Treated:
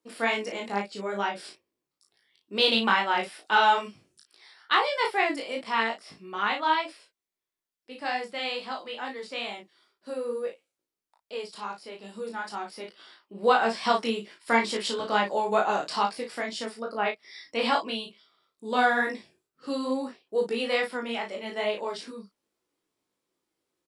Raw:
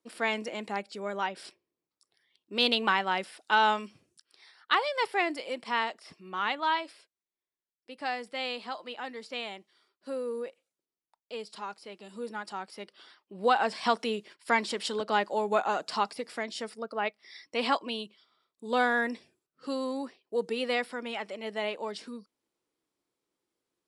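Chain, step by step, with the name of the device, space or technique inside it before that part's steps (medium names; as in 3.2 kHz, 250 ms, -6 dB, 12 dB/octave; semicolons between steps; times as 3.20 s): double-tracked vocal (doubling 35 ms -5 dB; chorus 2.3 Hz, delay 18.5 ms, depth 3.7 ms); trim +5 dB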